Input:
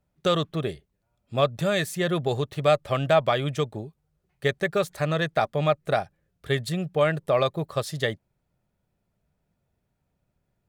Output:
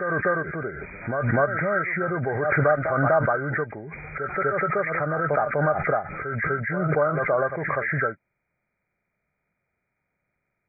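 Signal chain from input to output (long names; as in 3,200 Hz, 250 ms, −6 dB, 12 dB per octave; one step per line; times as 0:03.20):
hearing-aid frequency compression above 1,200 Hz 4 to 1
low-shelf EQ 210 Hz −11.5 dB
backwards echo 248 ms −15.5 dB
background raised ahead of every attack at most 26 dB per second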